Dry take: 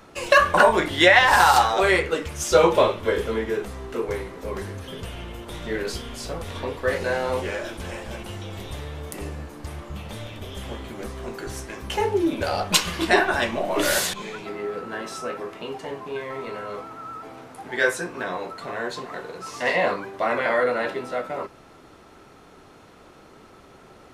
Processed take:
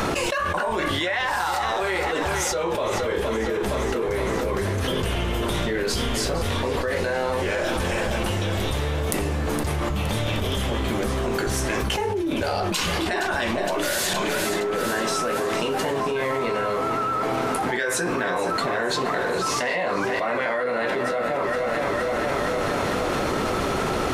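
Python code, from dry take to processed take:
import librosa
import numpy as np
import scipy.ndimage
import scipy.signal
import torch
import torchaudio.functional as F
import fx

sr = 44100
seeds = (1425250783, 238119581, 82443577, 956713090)

p1 = x + fx.echo_feedback(x, sr, ms=466, feedback_pct=56, wet_db=-13.5, dry=0)
p2 = fx.env_flatten(p1, sr, amount_pct=100)
y = F.gain(torch.from_numpy(p2), -13.0).numpy()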